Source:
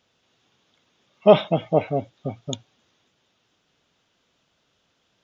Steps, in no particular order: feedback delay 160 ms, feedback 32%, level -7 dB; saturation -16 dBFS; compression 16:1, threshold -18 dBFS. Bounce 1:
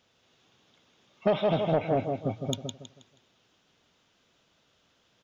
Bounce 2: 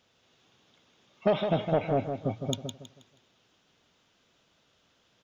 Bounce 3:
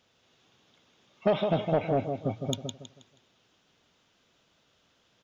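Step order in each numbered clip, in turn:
feedback delay > compression > saturation; compression > saturation > feedback delay; compression > feedback delay > saturation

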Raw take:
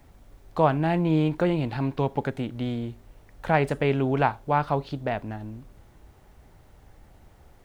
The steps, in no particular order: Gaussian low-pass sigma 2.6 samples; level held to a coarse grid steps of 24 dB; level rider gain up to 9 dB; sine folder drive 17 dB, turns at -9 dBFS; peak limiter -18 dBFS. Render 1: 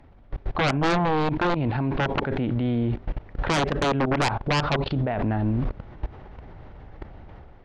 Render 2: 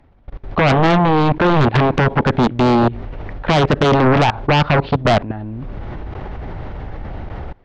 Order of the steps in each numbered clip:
Gaussian low-pass > level held to a coarse grid > sine folder > level rider > peak limiter; level rider > level held to a coarse grid > peak limiter > Gaussian low-pass > sine folder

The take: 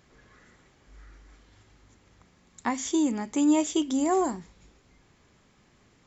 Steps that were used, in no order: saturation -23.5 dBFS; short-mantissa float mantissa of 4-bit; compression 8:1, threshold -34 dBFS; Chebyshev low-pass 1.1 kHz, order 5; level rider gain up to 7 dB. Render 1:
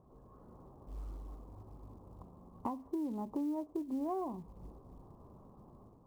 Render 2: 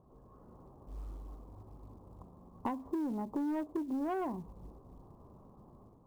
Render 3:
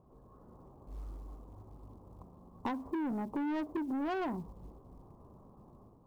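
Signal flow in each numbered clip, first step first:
level rider > compression > Chebyshev low-pass > saturation > short-mantissa float; Chebyshev low-pass > saturation > level rider > compression > short-mantissa float; Chebyshev low-pass > short-mantissa float > level rider > saturation > compression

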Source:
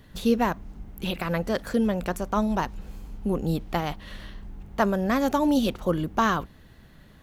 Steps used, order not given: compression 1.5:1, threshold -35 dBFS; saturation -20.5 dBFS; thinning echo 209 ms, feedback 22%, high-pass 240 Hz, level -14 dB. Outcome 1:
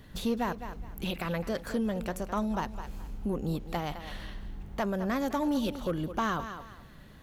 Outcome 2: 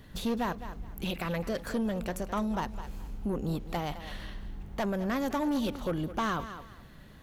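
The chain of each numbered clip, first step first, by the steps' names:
thinning echo > compression > saturation; saturation > thinning echo > compression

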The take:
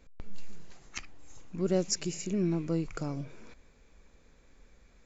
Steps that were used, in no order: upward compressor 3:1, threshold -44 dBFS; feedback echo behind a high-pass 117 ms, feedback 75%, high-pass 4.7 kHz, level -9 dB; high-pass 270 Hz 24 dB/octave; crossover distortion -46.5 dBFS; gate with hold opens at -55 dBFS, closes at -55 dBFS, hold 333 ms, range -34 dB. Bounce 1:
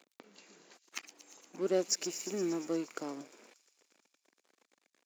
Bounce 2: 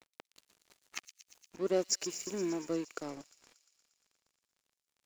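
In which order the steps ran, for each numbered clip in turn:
upward compressor > crossover distortion > feedback echo behind a high-pass > gate with hold > high-pass; gate with hold > high-pass > upward compressor > crossover distortion > feedback echo behind a high-pass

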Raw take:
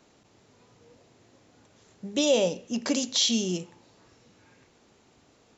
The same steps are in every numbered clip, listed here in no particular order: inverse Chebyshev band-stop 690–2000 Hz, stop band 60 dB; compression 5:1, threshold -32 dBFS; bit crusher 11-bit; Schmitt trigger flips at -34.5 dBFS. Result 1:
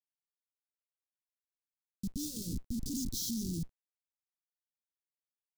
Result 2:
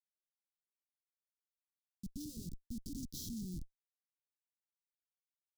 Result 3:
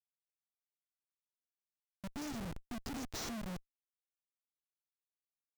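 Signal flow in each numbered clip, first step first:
Schmitt trigger > inverse Chebyshev band-stop > bit crusher > compression; compression > bit crusher > Schmitt trigger > inverse Chebyshev band-stop; inverse Chebyshev band-stop > compression > bit crusher > Schmitt trigger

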